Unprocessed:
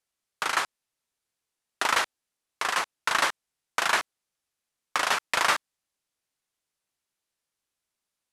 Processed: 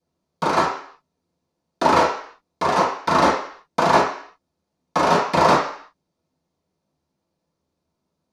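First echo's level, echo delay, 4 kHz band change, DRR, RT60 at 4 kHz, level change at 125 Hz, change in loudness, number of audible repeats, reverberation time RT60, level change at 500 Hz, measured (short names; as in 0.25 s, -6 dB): none, none, 0.0 dB, -11.0 dB, 0.60 s, +24.0 dB, +7.0 dB, none, 0.55 s, +17.0 dB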